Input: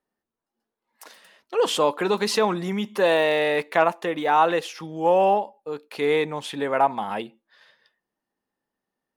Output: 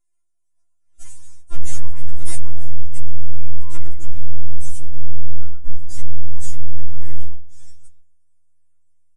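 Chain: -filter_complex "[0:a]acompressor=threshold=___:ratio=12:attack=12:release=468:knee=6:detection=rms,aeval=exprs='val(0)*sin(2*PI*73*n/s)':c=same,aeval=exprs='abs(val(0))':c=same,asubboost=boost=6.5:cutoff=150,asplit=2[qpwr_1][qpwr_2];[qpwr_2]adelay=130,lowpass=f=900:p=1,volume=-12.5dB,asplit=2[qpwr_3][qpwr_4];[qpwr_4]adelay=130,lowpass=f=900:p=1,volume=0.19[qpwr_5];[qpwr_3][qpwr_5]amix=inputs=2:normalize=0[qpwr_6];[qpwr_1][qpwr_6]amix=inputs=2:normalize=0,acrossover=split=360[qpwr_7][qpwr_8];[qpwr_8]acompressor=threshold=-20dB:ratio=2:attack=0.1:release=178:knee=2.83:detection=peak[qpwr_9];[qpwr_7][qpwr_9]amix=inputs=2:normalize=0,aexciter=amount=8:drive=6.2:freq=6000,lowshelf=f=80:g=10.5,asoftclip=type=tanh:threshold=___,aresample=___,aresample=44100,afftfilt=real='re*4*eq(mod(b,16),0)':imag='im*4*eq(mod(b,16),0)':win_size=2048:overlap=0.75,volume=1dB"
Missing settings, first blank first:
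-21dB, -12.5dB, 22050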